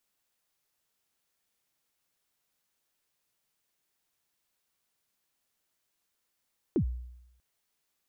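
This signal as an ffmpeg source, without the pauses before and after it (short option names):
-f lavfi -i "aevalsrc='0.0891*pow(10,-3*t/0.86)*sin(2*PI*(410*0.087/log(61/410)*(exp(log(61/410)*min(t,0.087)/0.087)-1)+61*max(t-0.087,0)))':d=0.64:s=44100"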